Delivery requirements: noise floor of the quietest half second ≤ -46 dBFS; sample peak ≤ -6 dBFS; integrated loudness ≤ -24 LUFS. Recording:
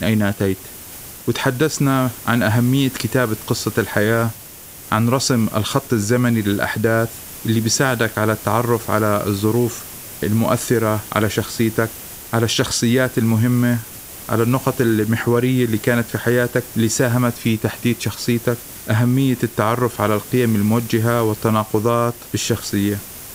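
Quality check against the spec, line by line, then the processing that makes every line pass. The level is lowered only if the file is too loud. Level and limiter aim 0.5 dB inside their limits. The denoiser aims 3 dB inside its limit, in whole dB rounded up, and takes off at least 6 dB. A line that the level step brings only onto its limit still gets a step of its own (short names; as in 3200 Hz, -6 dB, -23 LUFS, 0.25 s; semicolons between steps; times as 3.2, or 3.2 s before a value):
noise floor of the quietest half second -38 dBFS: fail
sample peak -2.5 dBFS: fail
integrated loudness -18.5 LUFS: fail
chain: denoiser 6 dB, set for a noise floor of -38 dBFS; gain -6 dB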